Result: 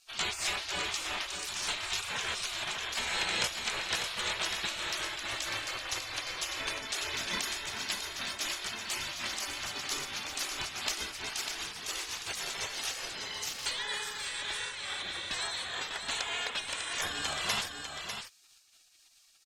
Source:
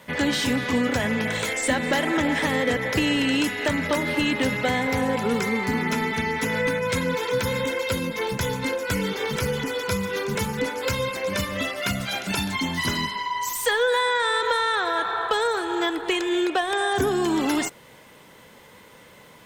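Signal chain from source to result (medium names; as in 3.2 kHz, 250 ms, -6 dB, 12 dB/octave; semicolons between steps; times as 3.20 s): spectral gate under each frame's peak -20 dB weak; treble shelf 2.2 kHz +9 dB; in parallel at -11 dB: bit crusher 7-bit; on the sum: distance through air 62 m; on a send: delay 598 ms -6.5 dB; on the sum: random flutter of the level, depth 50%; trim -2.5 dB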